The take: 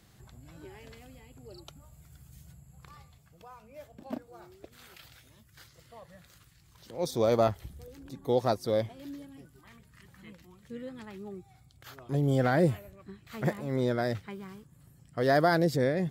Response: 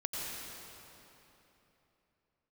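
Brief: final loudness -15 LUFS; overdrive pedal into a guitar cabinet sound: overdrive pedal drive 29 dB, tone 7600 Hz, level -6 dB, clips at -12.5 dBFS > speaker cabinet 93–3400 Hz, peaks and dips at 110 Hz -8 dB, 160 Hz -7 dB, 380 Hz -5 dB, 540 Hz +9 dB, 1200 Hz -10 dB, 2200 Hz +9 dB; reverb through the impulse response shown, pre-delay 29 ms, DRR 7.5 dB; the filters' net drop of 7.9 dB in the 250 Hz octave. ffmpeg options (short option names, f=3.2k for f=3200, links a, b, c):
-filter_complex "[0:a]equalizer=f=250:t=o:g=-7.5,asplit=2[a][b];[1:a]atrim=start_sample=2205,adelay=29[c];[b][c]afir=irnorm=-1:irlink=0,volume=-11dB[d];[a][d]amix=inputs=2:normalize=0,asplit=2[e][f];[f]highpass=f=720:p=1,volume=29dB,asoftclip=type=tanh:threshold=-12.5dB[g];[e][g]amix=inputs=2:normalize=0,lowpass=f=7.6k:p=1,volume=-6dB,highpass=93,equalizer=f=110:t=q:w=4:g=-8,equalizer=f=160:t=q:w=4:g=-7,equalizer=f=380:t=q:w=4:g=-5,equalizer=f=540:t=q:w=4:g=9,equalizer=f=1.2k:t=q:w=4:g=-10,equalizer=f=2.2k:t=q:w=4:g=9,lowpass=f=3.4k:w=0.5412,lowpass=f=3.4k:w=1.3066,volume=5dB"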